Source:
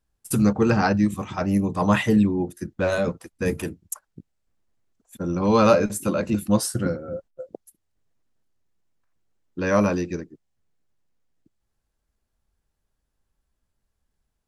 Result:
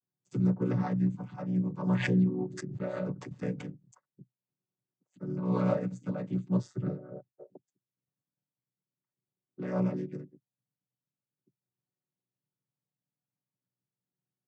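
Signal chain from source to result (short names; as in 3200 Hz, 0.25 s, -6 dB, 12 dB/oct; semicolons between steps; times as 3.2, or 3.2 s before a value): chord vocoder minor triad, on B2; 1.87–4.07 backwards sustainer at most 52 dB/s; gain -8 dB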